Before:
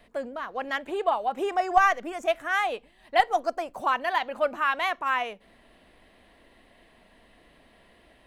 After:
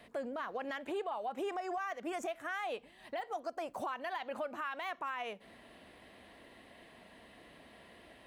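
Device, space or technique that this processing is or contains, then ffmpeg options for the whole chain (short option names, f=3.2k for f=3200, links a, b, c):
podcast mastering chain: -af "highpass=78,deesser=0.75,acompressor=threshold=-35dB:ratio=3,alimiter=level_in=7.5dB:limit=-24dB:level=0:latency=1:release=55,volume=-7.5dB,volume=1.5dB" -ar 48000 -c:a libmp3lame -b:a 128k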